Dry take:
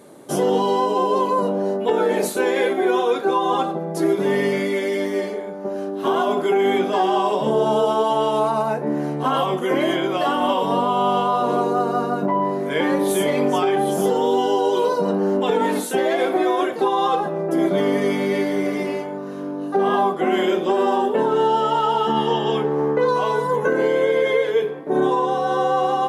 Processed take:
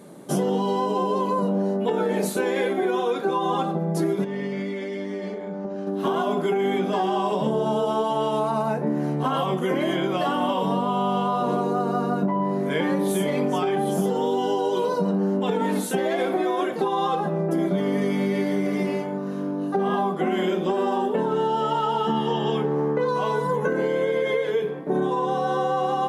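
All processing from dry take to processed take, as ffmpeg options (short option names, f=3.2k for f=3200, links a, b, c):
-filter_complex "[0:a]asettb=1/sr,asplit=3[a][b][c];[a]atrim=end=4.244[d];[b]atrim=start=4.24:end=5.87,asetpts=PTS-STARTPTS,afade=t=in:d=0.004:c=qsin,afade=t=out:st=1.626:d=0.004:c=qsin,lowpass=6k,acompressor=threshold=-28dB:ratio=4:attack=3.2:release=140:knee=1:detection=peak[e];[c]atrim=start=5.866[f];[d][e]acrossfade=d=0.004:c1=hsin:c2=qsin[g];[g][f]acrossfade=d=0.004:c1=qsin:c2=hsin,equalizer=f=180:t=o:w=0.57:g=10.5,acompressor=threshold=-18dB:ratio=6,volume=-1.5dB"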